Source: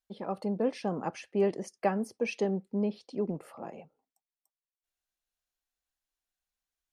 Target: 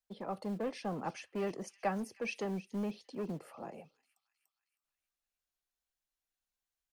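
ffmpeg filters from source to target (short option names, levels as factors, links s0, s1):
-filter_complex "[0:a]acrossover=split=190|600|1700[s0][s1][s2][s3];[s0]acrusher=bits=5:mode=log:mix=0:aa=0.000001[s4];[s1]asoftclip=type=tanh:threshold=0.0141[s5];[s3]aecho=1:1:314|628|942|1256|1570:0.168|0.0907|0.049|0.0264|0.0143[s6];[s4][s5][s2][s6]amix=inputs=4:normalize=0,volume=0.708"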